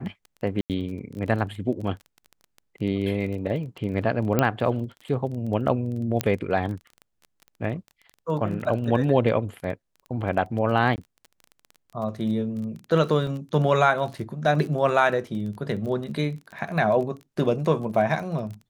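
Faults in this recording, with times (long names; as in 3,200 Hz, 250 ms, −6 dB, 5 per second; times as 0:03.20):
surface crackle 21 per second −33 dBFS
0:00.61–0:00.70: drop-out 88 ms
0:04.39: click −7 dBFS
0:06.21: click −7 dBFS
0:10.96–0:10.98: drop-out 19 ms
0:13.27: drop-out 2.1 ms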